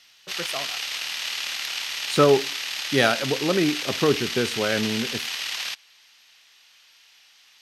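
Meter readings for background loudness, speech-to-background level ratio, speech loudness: -27.5 LUFS, 4.0 dB, -23.5 LUFS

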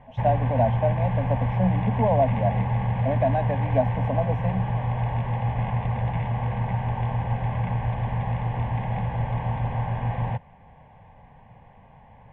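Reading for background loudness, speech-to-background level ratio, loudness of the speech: -26.5 LUFS, -0.5 dB, -27.0 LUFS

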